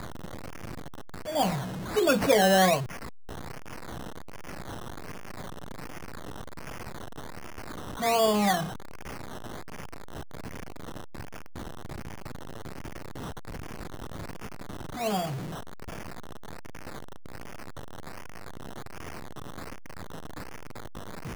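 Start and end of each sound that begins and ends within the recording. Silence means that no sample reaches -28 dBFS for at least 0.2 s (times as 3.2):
1.29–1.61
1.95–2.82
8.02–8.64
15–15.26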